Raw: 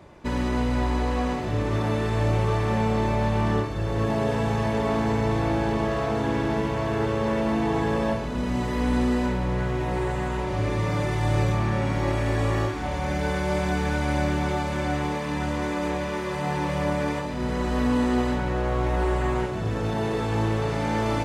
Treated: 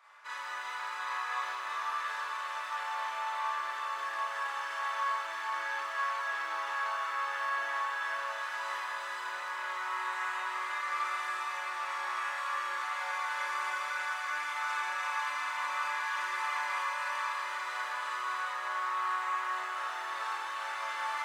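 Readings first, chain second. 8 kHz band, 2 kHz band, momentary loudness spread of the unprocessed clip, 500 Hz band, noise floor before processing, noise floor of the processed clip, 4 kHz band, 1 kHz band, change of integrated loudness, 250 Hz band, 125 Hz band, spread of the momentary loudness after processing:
−5.0 dB, 0.0 dB, 4 LU, −23.0 dB, −29 dBFS, −39 dBFS, −4.5 dB, −3.0 dB, −9.0 dB, below −40 dB, below −40 dB, 4 LU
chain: brickwall limiter −20.5 dBFS, peak gain reduction 8 dB
four-pole ladder high-pass 1,100 Hz, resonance 55%
delay that swaps between a low-pass and a high-pass 178 ms, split 1,400 Hz, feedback 87%, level −4 dB
four-comb reverb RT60 0.48 s, combs from 27 ms, DRR −4.5 dB
feedback echo at a low word length 163 ms, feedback 35%, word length 9 bits, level −15 dB

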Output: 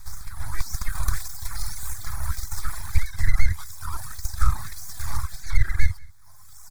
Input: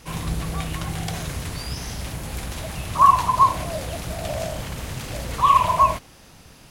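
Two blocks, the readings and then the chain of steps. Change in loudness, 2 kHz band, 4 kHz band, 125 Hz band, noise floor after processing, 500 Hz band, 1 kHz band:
−8.5 dB, −0.5 dB, −7.5 dB, 0.0 dB, −42 dBFS, −24.5 dB, −21.0 dB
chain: downward compressor 1.5 to 1, threshold −41 dBFS, peak gain reduction 11.5 dB
auto-filter high-pass sine 1.7 Hz 290–3,000 Hz
on a send: single-tap delay 187 ms −15 dB
on the sum: full-wave rectification
reverb reduction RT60 2 s
low shelf with overshoot 140 Hz +12 dB, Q 1.5
automatic gain control gain up to 9 dB
parametric band 310 Hz −7 dB 2.4 octaves
phaser with its sweep stopped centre 1,200 Hz, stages 4
boost into a limiter +7 dB
level −3.5 dB

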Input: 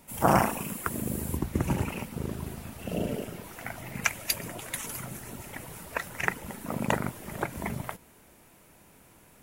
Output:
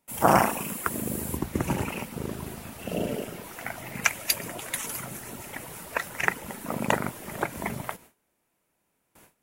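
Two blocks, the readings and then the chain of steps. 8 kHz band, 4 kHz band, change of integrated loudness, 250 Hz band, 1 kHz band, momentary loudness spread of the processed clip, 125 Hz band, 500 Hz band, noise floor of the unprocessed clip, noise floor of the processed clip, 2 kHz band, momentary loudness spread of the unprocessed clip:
+3.5 dB, +3.5 dB, +2.5 dB, +0.5 dB, +3.0 dB, 14 LU, −1.5 dB, +2.5 dB, −57 dBFS, −76 dBFS, +3.5 dB, 12 LU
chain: low-shelf EQ 160 Hz −8.5 dB
noise gate with hold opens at −46 dBFS
level +3.5 dB

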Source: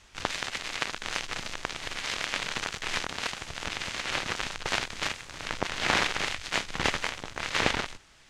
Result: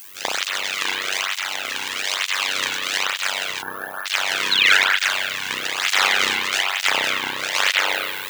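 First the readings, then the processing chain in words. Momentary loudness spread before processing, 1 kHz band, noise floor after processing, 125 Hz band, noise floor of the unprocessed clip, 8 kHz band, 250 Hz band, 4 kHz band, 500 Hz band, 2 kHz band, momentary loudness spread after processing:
8 LU, +8.0 dB, −32 dBFS, can't be measured, −56 dBFS, +10.0 dB, 0.0 dB, +12.0 dB, +4.5 dB, +11.5 dB, 9 LU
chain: background noise violet −55 dBFS
high-shelf EQ 3,500 Hz +11.5 dB
noise that follows the level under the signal 17 dB
reversed playback
upward compression, threshold −28 dBFS
reversed playback
sound drawn into the spectrogram fall, 0:04.51–0:04.74, 1,300–4,400 Hz −20 dBFS
low-shelf EQ 410 Hz −9.5 dB
spring reverb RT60 1.9 s, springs 31 ms, chirp 30 ms, DRR −6 dB
amplitude modulation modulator 96 Hz, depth 80%
gain on a spectral selection 0:03.62–0:04.06, 1,800–9,800 Hz −26 dB
boost into a limiter +6 dB
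through-zero flanger with one copy inverted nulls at 1.1 Hz, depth 1.7 ms
level +2 dB

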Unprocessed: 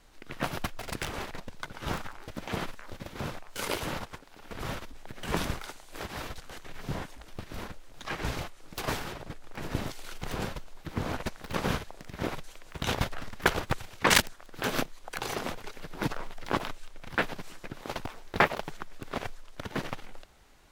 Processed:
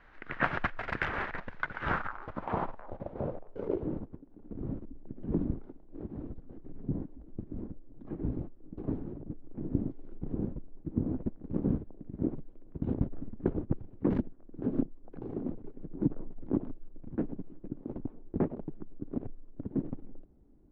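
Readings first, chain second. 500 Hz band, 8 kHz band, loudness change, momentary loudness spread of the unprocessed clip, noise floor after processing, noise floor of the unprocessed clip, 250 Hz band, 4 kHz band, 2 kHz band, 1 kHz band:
−2.5 dB, below −35 dB, −2.5 dB, 15 LU, −54 dBFS, −52 dBFS, +4.5 dB, below −20 dB, can't be measured, −6.5 dB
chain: high-shelf EQ 6,200 Hz −11.5 dB
low-pass filter sweep 1,700 Hz → 290 Hz, 0:01.82–0:04.12
high-shelf EQ 2,400 Hz +8.5 dB
level −1 dB

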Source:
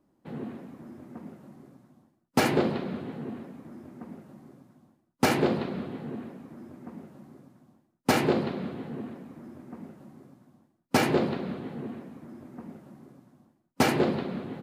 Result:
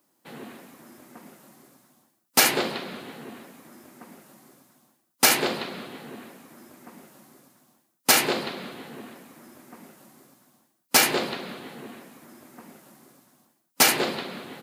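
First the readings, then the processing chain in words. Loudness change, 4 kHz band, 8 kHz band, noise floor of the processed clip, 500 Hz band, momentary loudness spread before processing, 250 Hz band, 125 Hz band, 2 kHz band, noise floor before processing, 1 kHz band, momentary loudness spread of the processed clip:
+7.0 dB, +11.5 dB, +16.0 dB, −72 dBFS, −2.0 dB, 21 LU, −5.5 dB, −9.5 dB, +7.5 dB, −72 dBFS, +2.5 dB, 21 LU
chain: spectral tilt +4.5 dB per octave
level +3 dB

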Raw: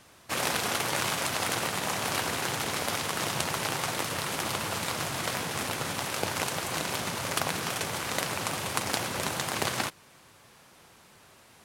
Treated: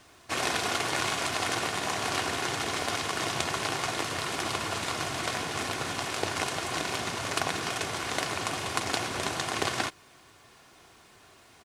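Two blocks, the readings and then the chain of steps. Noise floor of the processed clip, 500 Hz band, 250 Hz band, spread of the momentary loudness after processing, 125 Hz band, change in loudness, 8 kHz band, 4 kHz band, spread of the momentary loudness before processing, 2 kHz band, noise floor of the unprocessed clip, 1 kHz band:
−57 dBFS, +0.5 dB, 0.0 dB, 3 LU, −1.5 dB, 0.0 dB, −2.0 dB, +0.5 dB, 3 LU, +0.5 dB, −57 dBFS, +0.5 dB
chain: low-pass filter 9,100 Hz 12 dB per octave
bit-depth reduction 12 bits, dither triangular
comb filter 2.8 ms, depth 38%
highs frequency-modulated by the lows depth 0.17 ms

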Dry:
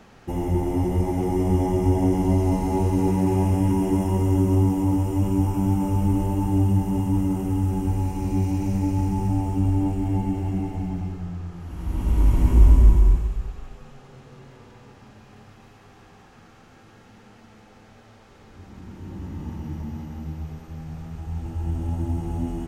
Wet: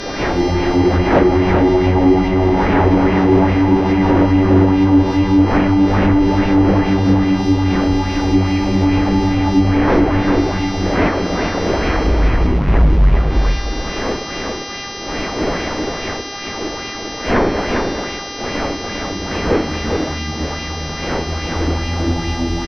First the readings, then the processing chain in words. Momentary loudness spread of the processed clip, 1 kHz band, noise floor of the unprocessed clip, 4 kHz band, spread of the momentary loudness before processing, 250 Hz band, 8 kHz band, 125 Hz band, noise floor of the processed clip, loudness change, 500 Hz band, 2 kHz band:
11 LU, +13.0 dB, −50 dBFS, can't be measured, 15 LU, +10.0 dB, +13.0 dB, +4.5 dB, −27 dBFS, +7.0 dB, +13.0 dB, +24.0 dB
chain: wind on the microphone 510 Hz −30 dBFS
octave-band graphic EQ 125/2,000/8,000 Hz −6/+8/−8 dB
hum with harmonics 400 Hz, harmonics 15, −39 dBFS 0 dB per octave
parametric band 300 Hz +3.5 dB 0.21 octaves
treble cut that deepens with the level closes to 2,400 Hz, closed at −16.5 dBFS
in parallel at −7 dB: sine wavefolder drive 11 dB, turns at −3.5 dBFS
on the sum: single-tap delay 401 ms −4.5 dB
auto-filter bell 2.4 Hz 310–2,600 Hz +6 dB
level −3.5 dB

